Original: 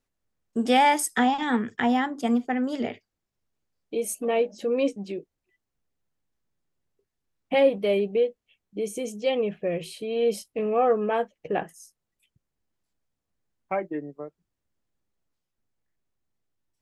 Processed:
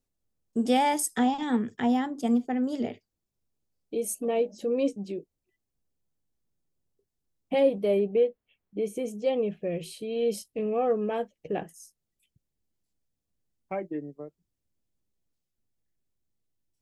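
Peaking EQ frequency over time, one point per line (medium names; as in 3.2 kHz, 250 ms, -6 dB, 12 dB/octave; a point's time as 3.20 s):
peaking EQ -9.5 dB 2.3 oct
7.73 s 1.7 kHz
8.24 s 6.7 kHz
8.95 s 6.7 kHz
9.54 s 1.3 kHz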